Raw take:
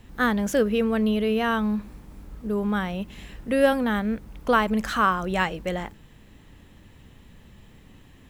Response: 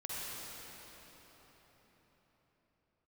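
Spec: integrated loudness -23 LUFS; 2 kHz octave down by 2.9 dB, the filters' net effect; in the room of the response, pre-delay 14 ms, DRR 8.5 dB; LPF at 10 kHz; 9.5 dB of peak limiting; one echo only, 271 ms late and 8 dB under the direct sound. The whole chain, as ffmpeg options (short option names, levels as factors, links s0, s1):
-filter_complex "[0:a]lowpass=10000,equalizer=f=2000:t=o:g=-4,alimiter=limit=0.133:level=0:latency=1,aecho=1:1:271:0.398,asplit=2[s0][s1];[1:a]atrim=start_sample=2205,adelay=14[s2];[s1][s2]afir=irnorm=-1:irlink=0,volume=0.282[s3];[s0][s3]amix=inputs=2:normalize=0,volume=1.41"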